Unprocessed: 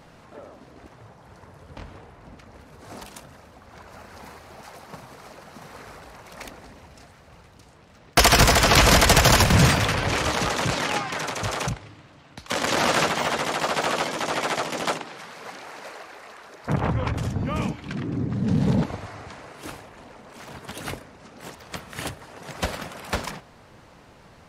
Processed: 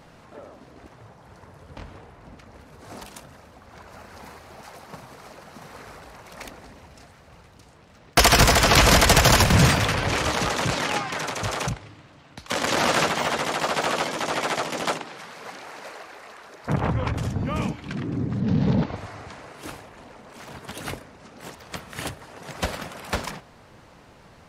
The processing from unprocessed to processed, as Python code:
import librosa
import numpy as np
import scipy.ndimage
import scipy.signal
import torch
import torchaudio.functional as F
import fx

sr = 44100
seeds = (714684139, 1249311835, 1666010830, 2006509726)

y = fx.lowpass(x, sr, hz=5400.0, slope=24, at=(18.4, 18.96))